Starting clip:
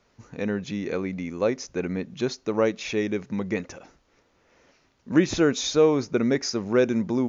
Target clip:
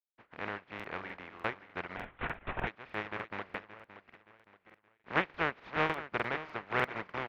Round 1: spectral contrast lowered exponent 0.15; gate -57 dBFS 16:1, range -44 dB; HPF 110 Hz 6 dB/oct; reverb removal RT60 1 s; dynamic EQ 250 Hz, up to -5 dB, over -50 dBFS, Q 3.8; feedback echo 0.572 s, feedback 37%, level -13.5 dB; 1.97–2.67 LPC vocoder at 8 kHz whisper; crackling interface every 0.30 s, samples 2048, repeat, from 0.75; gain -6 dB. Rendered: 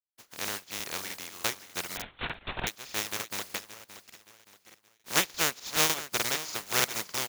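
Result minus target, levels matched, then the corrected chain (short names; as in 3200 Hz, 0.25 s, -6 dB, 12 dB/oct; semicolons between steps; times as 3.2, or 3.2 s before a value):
2000 Hz band -4.5 dB
spectral contrast lowered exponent 0.15; gate -57 dBFS 16:1, range -44 dB; HPF 110 Hz 6 dB/oct; reverb removal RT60 1 s; dynamic EQ 250 Hz, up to -5 dB, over -50 dBFS, Q 3.8; LPF 2200 Hz 24 dB/oct; feedback echo 0.572 s, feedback 37%, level -13.5 dB; 1.97–2.67 LPC vocoder at 8 kHz whisper; crackling interface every 0.30 s, samples 2048, repeat, from 0.75; gain -6 dB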